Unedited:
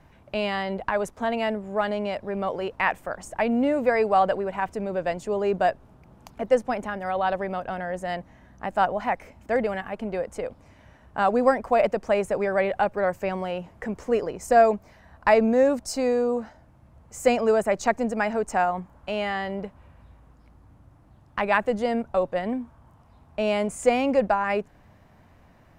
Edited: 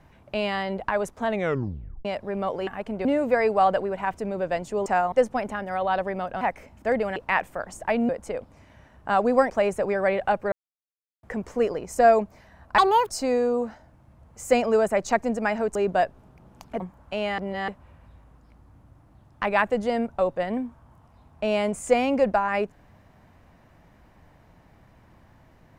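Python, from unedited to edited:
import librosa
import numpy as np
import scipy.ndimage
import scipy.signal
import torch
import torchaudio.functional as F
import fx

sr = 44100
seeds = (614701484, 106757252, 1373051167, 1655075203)

y = fx.edit(x, sr, fx.tape_stop(start_s=1.27, length_s=0.78),
    fx.swap(start_s=2.67, length_s=0.93, other_s=9.8, other_length_s=0.38),
    fx.swap(start_s=5.41, length_s=1.05, other_s=18.5, other_length_s=0.26),
    fx.cut(start_s=7.75, length_s=1.3),
    fx.cut(start_s=11.59, length_s=0.43),
    fx.silence(start_s=13.04, length_s=0.71),
    fx.speed_span(start_s=15.3, length_s=0.54, speed=1.73),
    fx.reverse_span(start_s=19.34, length_s=0.3), tone=tone)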